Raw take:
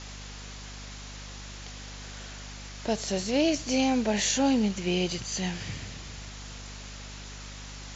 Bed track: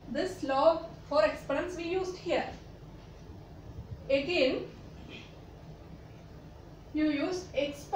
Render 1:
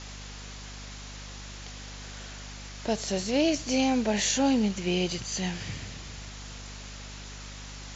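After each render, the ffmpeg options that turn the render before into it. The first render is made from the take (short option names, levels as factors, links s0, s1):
-af anull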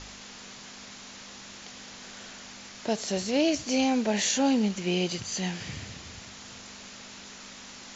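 -af "bandreject=f=50:t=h:w=4,bandreject=f=100:t=h:w=4,bandreject=f=150:t=h:w=4"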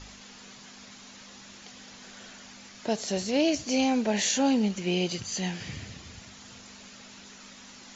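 -af "afftdn=nr=6:nf=-46"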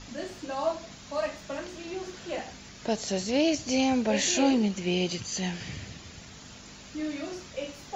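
-filter_complex "[1:a]volume=0.596[s0];[0:a][s0]amix=inputs=2:normalize=0"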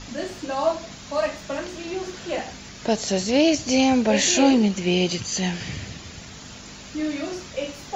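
-af "volume=2.11"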